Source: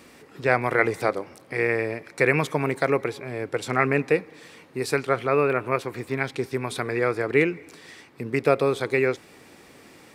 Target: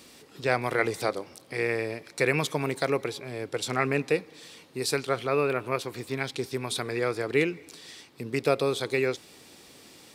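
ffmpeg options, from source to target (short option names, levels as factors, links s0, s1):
-af "highshelf=f=2700:t=q:w=1.5:g=7,volume=0.631"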